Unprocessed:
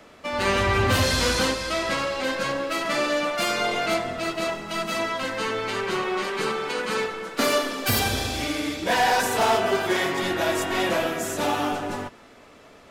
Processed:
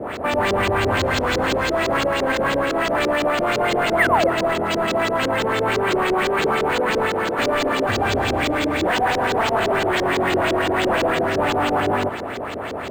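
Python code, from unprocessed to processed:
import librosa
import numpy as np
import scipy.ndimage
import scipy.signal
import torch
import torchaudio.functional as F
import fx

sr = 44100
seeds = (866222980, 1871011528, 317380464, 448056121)

p1 = fx.bin_compress(x, sr, power=0.6)
p2 = scipy.signal.sosfilt(scipy.signal.butter(2, 57.0, 'highpass', fs=sr, output='sos'), p1)
p3 = fx.fold_sine(p2, sr, drive_db=14, ceiling_db=-7.0)
p4 = p2 + F.gain(torch.from_numpy(p3), -12.0).numpy()
p5 = fx.spec_paint(p4, sr, seeds[0], shape='fall', start_s=3.98, length_s=0.29, low_hz=490.0, high_hz=2300.0, level_db=-15.0)
p6 = fx.filter_lfo_lowpass(p5, sr, shape='saw_up', hz=5.9, low_hz=350.0, high_hz=5100.0, q=2.0)
p7 = p6 + fx.echo_single(p6, sr, ms=276, db=-22.5, dry=0)
p8 = np.interp(np.arange(len(p7)), np.arange(len(p7))[::4], p7[::4])
y = F.gain(torch.from_numpy(p8), -4.5).numpy()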